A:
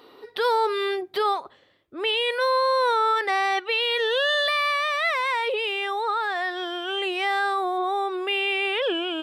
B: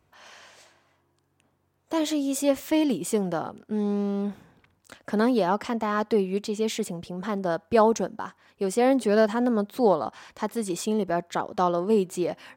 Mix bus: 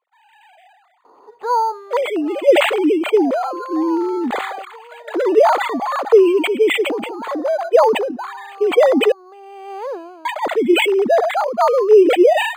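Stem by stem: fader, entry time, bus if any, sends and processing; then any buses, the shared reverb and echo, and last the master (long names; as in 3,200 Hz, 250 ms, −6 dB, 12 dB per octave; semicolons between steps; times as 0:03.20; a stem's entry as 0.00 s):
−14.0 dB, 1.05 s, no send, low-pass with resonance 960 Hz, resonance Q 3.5; automatic ducking −12 dB, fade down 0.35 s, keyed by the second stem
+1.5 dB, 0.00 s, muted 0:09.12–0:10.25, no send, three sine waves on the formant tracks; notch filter 1,600 Hz, Q 8.9; level that may fall only so fast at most 49 dB per second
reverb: not used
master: parametric band 70 Hz −15 dB 2.7 octaves; automatic gain control gain up to 13.5 dB; linearly interpolated sample-rate reduction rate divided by 8×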